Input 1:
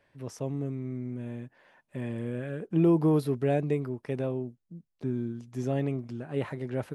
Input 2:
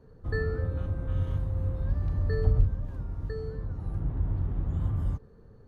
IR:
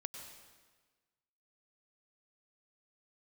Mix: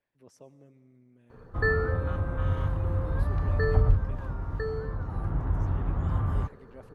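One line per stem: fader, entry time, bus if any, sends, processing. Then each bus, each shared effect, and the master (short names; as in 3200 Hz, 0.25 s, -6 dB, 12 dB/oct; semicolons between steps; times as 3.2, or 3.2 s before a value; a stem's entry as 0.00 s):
-15.5 dB, 0.00 s, send -7.5 dB, harmonic-percussive split harmonic -11 dB
+1.0 dB, 1.30 s, no send, bell 1200 Hz +11.5 dB 2.1 oct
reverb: on, RT60 1.4 s, pre-delay 90 ms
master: dry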